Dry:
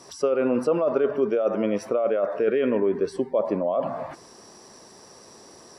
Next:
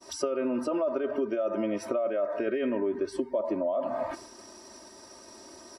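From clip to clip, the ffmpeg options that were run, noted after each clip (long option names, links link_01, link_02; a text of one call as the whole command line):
ffmpeg -i in.wav -af "agate=range=-33dB:threshold=-44dB:ratio=3:detection=peak,aecho=1:1:3.2:0.89,acompressor=threshold=-26dB:ratio=6" out.wav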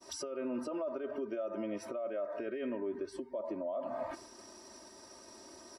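ffmpeg -i in.wav -af "alimiter=level_in=0.5dB:limit=-24dB:level=0:latency=1:release=378,volume=-0.5dB,volume=-4.5dB" out.wav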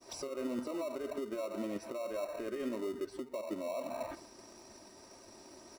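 ffmpeg -i in.wav -filter_complex "[0:a]flanger=delay=0:depth=8.4:regen=79:speed=1.7:shape=triangular,asplit=2[link_01][link_02];[link_02]acrusher=samples=27:mix=1:aa=0.000001,volume=-7dB[link_03];[link_01][link_03]amix=inputs=2:normalize=0,volume=1.5dB" out.wav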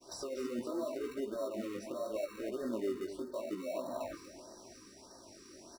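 ffmpeg -i in.wav -filter_complex "[0:a]flanger=delay=15:depth=6.9:speed=0.81,asplit=2[link_01][link_02];[link_02]aecho=0:1:239|745:0.282|0.1[link_03];[link_01][link_03]amix=inputs=2:normalize=0,afftfilt=real='re*(1-between(b*sr/1024,690*pow(2700/690,0.5+0.5*sin(2*PI*1.6*pts/sr))/1.41,690*pow(2700/690,0.5+0.5*sin(2*PI*1.6*pts/sr))*1.41))':imag='im*(1-between(b*sr/1024,690*pow(2700/690,0.5+0.5*sin(2*PI*1.6*pts/sr))/1.41,690*pow(2700/690,0.5+0.5*sin(2*PI*1.6*pts/sr))*1.41))':win_size=1024:overlap=0.75,volume=3dB" out.wav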